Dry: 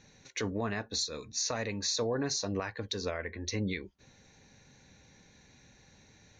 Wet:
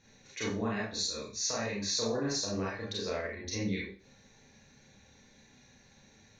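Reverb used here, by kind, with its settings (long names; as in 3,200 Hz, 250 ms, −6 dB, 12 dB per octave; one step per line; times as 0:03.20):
four-comb reverb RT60 0.38 s, combs from 28 ms, DRR −5.5 dB
level −6.5 dB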